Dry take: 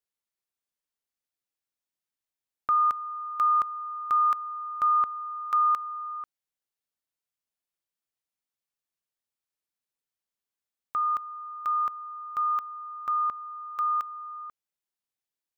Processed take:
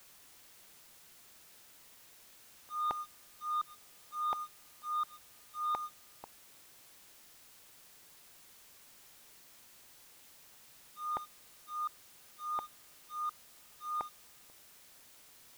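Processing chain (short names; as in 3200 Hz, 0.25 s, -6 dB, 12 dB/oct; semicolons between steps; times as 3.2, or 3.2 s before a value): elliptic low-pass 860 Hz, stop band 50 dB; gate -56 dBFS, range -19 dB; auto swell 0.334 s; sample leveller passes 3; added noise white -68 dBFS; gain +9 dB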